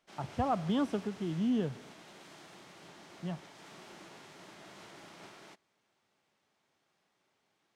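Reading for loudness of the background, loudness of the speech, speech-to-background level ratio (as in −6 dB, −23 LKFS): −52.5 LKFS, −34.5 LKFS, 18.0 dB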